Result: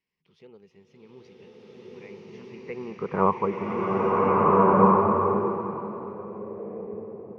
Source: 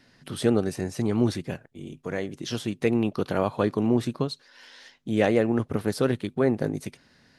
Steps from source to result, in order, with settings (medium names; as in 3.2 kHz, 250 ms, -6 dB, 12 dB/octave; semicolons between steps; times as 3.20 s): Doppler pass-by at 3.25 s, 18 m/s, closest 1.7 m; low-pass sweep 3.4 kHz -> 710 Hz, 1.59–4.28 s; rippled EQ curve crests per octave 0.8, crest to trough 12 dB; low-pass that closes with the level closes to 2.2 kHz, closed at -24.5 dBFS; swelling reverb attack 1610 ms, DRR -9 dB